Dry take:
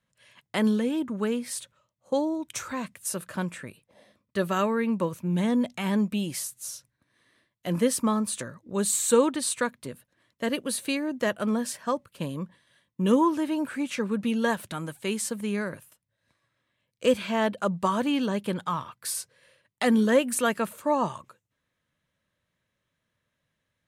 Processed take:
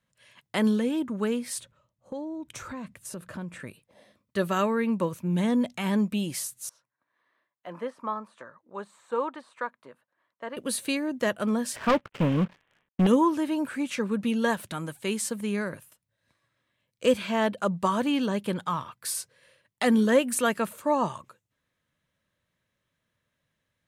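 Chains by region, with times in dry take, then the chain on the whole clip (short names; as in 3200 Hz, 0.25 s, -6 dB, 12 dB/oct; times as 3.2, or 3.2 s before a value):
1.58–3.6 tilt -2 dB/oct + compressor 3:1, threshold -36 dBFS
6.69–10.57 de-esser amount 85% + band-pass 1000 Hz, Q 1.5
11.76–13.07 CVSD 16 kbps + sample leveller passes 3
whole clip: dry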